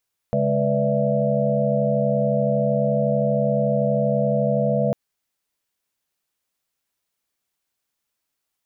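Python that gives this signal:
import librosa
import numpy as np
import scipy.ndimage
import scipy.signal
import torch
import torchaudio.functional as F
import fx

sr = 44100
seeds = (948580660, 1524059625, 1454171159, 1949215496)

y = fx.chord(sr, length_s=4.6, notes=(49, 56, 71, 74, 76), wave='sine', level_db=-24.0)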